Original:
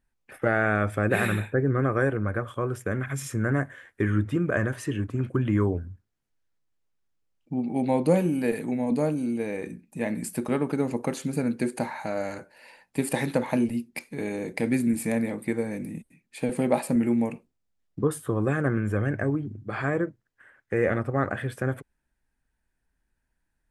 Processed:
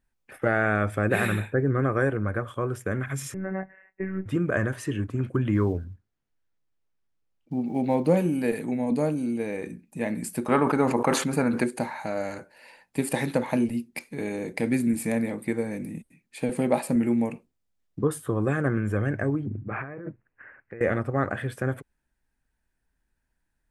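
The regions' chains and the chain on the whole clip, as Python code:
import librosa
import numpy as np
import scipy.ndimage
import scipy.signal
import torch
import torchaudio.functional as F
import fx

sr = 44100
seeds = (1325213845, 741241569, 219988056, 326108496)

y = fx.chain(x, sr, fx.low_shelf(hz=340.0, db=6.0),
    fx.robotise(hz=190.0),
    fx.cheby_ripple(hz=2800.0, ripple_db=9), at=(3.34, 4.26))
y = fx.chain(y, sr, fx.block_float(bits=7),
    fx.high_shelf(hz=6300.0, db=-11.5), at=(5.54, 8.17))
y = fx.chain(y, sr, fx.peak_eq(hz=1100.0, db=12.0, octaves=1.7),
    fx.sustainer(db_per_s=73.0), at=(10.47, 11.64))
y = fx.chain(y, sr, fx.steep_lowpass(hz=2700.0, slope=72),
    fx.over_compress(threshold_db=-35.0, ratio=-1.0), at=(19.46, 20.81))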